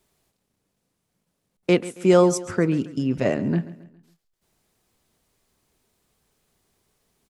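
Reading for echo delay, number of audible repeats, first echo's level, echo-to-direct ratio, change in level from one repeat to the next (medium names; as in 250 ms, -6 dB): 137 ms, 3, -17.0 dB, -16.0 dB, -7.5 dB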